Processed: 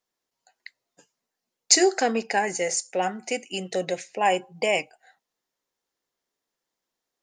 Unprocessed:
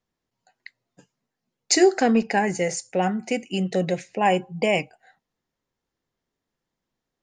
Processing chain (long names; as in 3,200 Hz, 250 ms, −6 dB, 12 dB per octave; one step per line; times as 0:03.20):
bass and treble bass −15 dB, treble +6 dB
level −1 dB